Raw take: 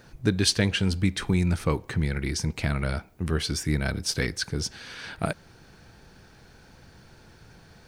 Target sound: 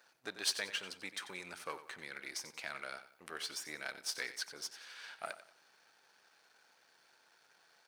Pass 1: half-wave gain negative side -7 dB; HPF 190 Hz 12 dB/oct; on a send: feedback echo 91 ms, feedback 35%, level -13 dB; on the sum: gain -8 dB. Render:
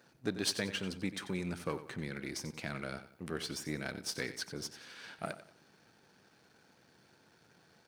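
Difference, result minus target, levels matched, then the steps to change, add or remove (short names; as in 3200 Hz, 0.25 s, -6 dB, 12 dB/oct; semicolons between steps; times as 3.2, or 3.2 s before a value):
250 Hz band +14.5 dB
change: HPF 750 Hz 12 dB/oct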